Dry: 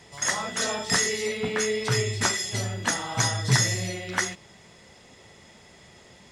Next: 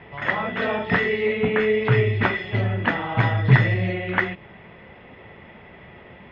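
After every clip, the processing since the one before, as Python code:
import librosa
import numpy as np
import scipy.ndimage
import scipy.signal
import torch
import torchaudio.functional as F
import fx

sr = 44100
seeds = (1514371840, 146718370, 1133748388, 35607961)

y = scipy.signal.sosfilt(scipy.signal.butter(6, 2800.0, 'lowpass', fs=sr, output='sos'), x)
y = fx.dynamic_eq(y, sr, hz=1200.0, q=0.78, threshold_db=-39.0, ratio=4.0, max_db=-4)
y = F.gain(torch.from_numpy(y), 8.0).numpy()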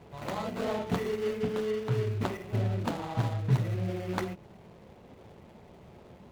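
y = scipy.signal.medfilt(x, 25)
y = fx.rider(y, sr, range_db=3, speed_s=0.5)
y = F.gain(torch.from_numpy(y), -8.0).numpy()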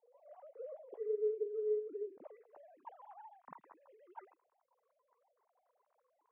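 y = fx.sine_speech(x, sr)
y = fx.filter_sweep_bandpass(y, sr, from_hz=470.0, to_hz=980.0, start_s=2.14, end_s=2.82, q=4.0)
y = F.gain(torch.from_numpy(y), -9.0).numpy()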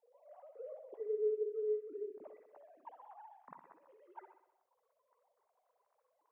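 y = fx.echo_feedback(x, sr, ms=63, feedback_pct=58, wet_db=-10.0)
y = F.gain(torch.from_numpy(y), -1.0).numpy()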